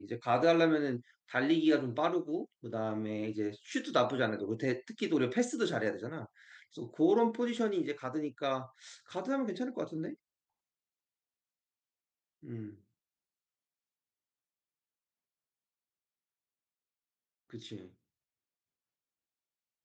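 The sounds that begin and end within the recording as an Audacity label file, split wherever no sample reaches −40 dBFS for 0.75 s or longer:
12.450000	12.690000	sound
17.540000	17.800000	sound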